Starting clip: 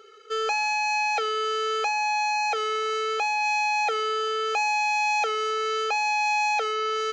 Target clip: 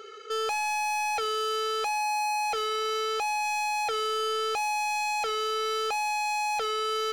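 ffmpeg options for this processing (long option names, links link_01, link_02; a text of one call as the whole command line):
ffmpeg -i in.wav -filter_complex "[0:a]asplit=2[link_01][link_02];[link_02]alimiter=level_in=2.5dB:limit=-24dB:level=0:latency=1,volume=-2.5dB,volume=0dB[link_03];[link_01][link_03]amix=inputs=2:normalize=0,asoftclip=type=tanh:threshold=-27dB" out.wav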